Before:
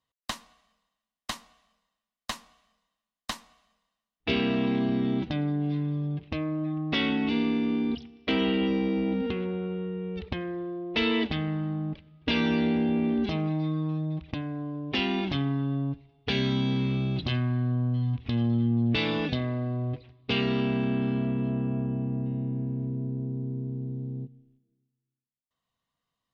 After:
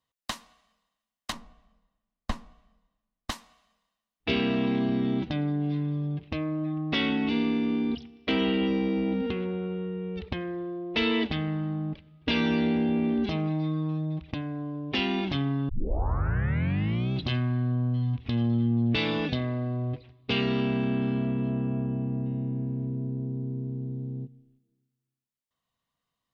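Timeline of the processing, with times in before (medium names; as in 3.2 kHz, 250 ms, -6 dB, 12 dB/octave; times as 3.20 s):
1.32–3.30 s: tilt EQ -4 dB/octave
15.69 s: tape start 1.43 s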